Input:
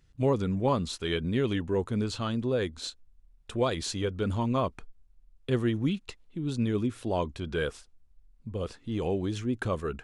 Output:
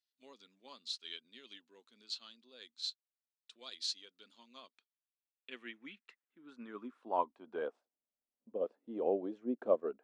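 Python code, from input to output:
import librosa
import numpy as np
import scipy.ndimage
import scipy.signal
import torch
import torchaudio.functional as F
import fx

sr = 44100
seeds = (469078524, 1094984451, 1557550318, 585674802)

y = fx.filter_sweep_bandpass(x, sr, from_hz=4300.0, to_hz=600.0, start_s=4.58, end_s=7.97, q=2.9)
y = fx.low_shelf_res(y, sr, hz=160.0, db=-13.5, q=3.0)
y = fx.upward_expand(y, sr, threshold_db=-57.0, expansion=1.5)
y = F.gain(torch.from_numpy(y), 4.5).numpy()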